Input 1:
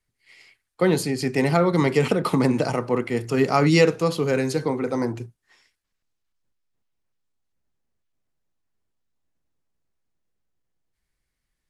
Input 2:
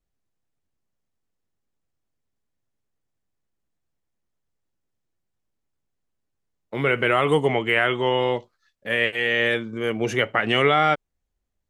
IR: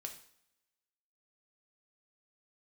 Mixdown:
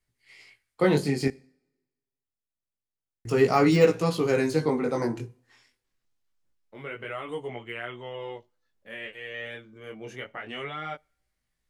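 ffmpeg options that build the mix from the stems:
-filter_complex "[0:a]deesser=0.7,volume=0.5dB,asplit=3[a][b][c];[a]atrim=end=1.28,asetpts=PTS-STARTPTS,afade=t=out:st=1.276:d=0.004:c=hsin[d];[b]atrim=start=1.28:end=3.25,asetpts=PTS-STARTPTS,volume=0[e];[c]atrim=start=3.25,asetpts=PTS-STARTPTS,afade=t=in:d=0.004:c=hsin[f];[d][e][f]concat=n=3:v=0:a=1,asplit=2[g][h];[h]volume=-10dB[i];[1:a]volume=-13.5dB,asplit=2[j][k];[k]volume=-19.5dB[l];[2:a]atrim=start_sample=2205[m];[i][l]amix=inputs=2:normalize=0[n];[n][m]afir=irnorm=-1:irlink=0[o];[g][j][o]amix=inputs=3:normalize=0,flanger=delay=16.5:depth=7.7:speed=0.26"

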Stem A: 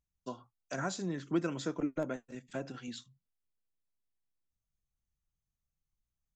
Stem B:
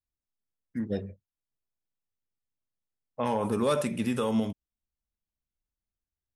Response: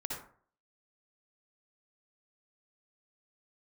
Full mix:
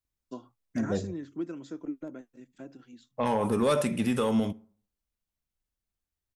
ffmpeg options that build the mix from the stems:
-filter_complex "[0:a]equalizer=f=300:t=o:w=0.85:g=10,adelay=50,volume=-4dB,afade=t=out:st=0.83:d=0.58:silence=0.446684,afade=t=out:st=2.65:d=0.76:silence=0.316228[a];[1:a]volume=2dB,asplit=2[b][c];[c]volume=-24dB[d];[2:a]atrim=start_sample=2205[e];[d][e]afir=irnorm=-1:irlink=0[f];[a][b][f]amix=inputs=3:normalize=0,asoftclip=type=tanh:threshold=-15dB"

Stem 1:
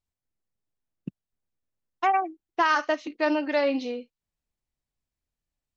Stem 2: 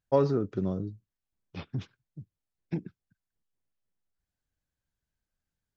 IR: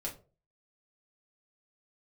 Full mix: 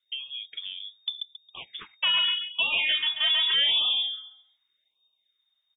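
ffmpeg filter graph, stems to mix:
-filter_complex "[0:a]lowshelf=f=440:g=4.5,volume=3dB,asplit=4[a][b][c][d];[b]volume=-7.5dB[e];[c]volume=-5.5dB[f];[1:a]dynaudnorm=f=100:g=13:m=8.5dB,highpass=520,acompressor=threshold=-34dB:ratio=16,volume=2.5dB[g];[d]apad=whole_len=254129[h];[g][h]sidechaincompress=threshold=-41dB:ratio=8:attack=12:release=390[i];[2:a]atrim=start_sample=2205[j];[e][j]afir=irnorm=-1:irlink=0[k];[f]aecho=0:1:136|272|408|544:1|0.26|0.0676|0.0176[l];[a][i][k][l]amix=inputs=4:normalize=0,asoftclip=type=tanh:threshold=-21dB,lowpass=f=3.1k:t=q:w=0.5098,lowpass=f=3.1k:t=q:w=0.6013,lowpass=f=3.1k:t=q:w=0.9,lowpass=f=3.1k:t=q:w=2.563,afreqshift=-3700,afftfilt=real='re*(1-between(b*sr/1024,360*pow(1800/360,0.5+0.5*sin(2*PI*0.84*pts/sr))/1.41,360*pow(1800/360,0.5+0.5*sin(2*PI*0.84*pts/sr))*1.41))':imag='im*(1-between(b*sr/1024,360*pow(1800/360,0.5+0.5*sin(2*PI*0.84*pts/sr))/1.41,360*pow(1800/360,0.5+0.5*sin(2*PI*0.84*pts/sr))*1.41))':win_size=1024:overlap=0.75"

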